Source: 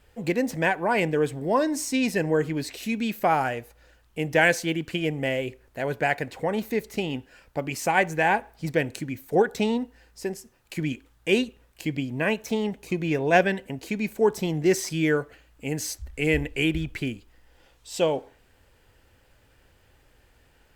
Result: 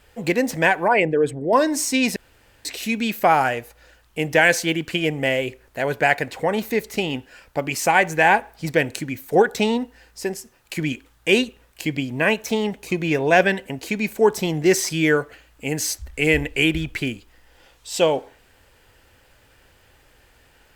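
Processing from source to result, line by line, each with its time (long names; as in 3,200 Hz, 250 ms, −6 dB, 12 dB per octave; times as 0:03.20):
0:00.88–0:01.53: spectral envelope exaggerated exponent 1.5
0:02.16–0:02.65: fill with room tone
whole clip: low-shelf EQ 470 Hz −5.5 dB; boost into a limiter +10.5 dB; level −3 dB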